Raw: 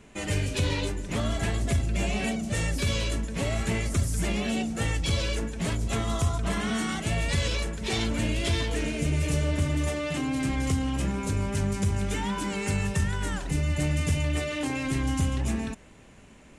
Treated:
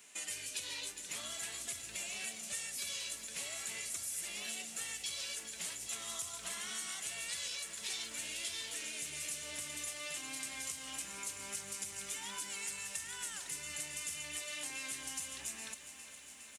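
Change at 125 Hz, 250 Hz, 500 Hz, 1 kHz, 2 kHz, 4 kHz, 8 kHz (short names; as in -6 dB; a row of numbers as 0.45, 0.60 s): -36.0, -29.0, -22.0, -16.5, -10.5, -6.5, -0.5 dB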